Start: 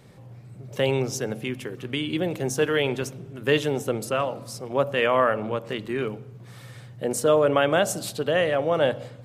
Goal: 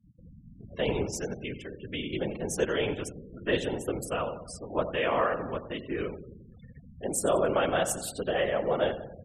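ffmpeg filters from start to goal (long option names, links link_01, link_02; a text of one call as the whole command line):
ffmpeg -i in.wav -af "afftfilt=real='hypot(re,im)*cos(2*PI*random(0))':imag='hypot(re,im)*sin(2*PI*random(1))':win_size=512:overlap=0.75,aecho=1:1:91|182|273|364|455|546:0.211|0.12|0.0687|0.0391|0.0223|0.0127,afftfilt=real='re*gte(hypot(re,im),0.00708)':imag='im*gte(hypot(re,im),0.00708)':win_size=1024:overlap=0.75,aexciter=amount=2.4:drive=3.2:freq=7600" out.wav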